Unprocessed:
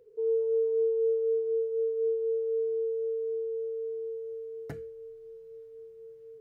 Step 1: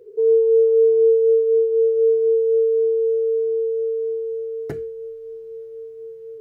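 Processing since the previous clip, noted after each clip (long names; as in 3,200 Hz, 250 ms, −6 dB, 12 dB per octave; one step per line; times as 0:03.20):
parametric band 380 Hz +15 dB 0.33 octaves
level +7 dB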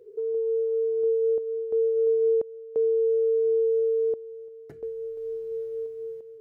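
downward compressor 3 to 1, threshold −25 dBFS, peak gain reduction 9.5 dB
sample-and-hold tremolo 2.9 Hz, depth 90%
level +3 dB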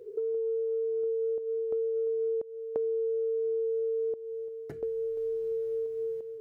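downward compressor 5 to 1, threshold −34 dBFS, peak gain reduction 12.5 dB
level +4 dB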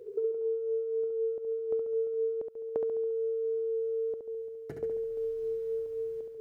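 flutter between parallel walls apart 11.9 metres, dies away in 0.78 s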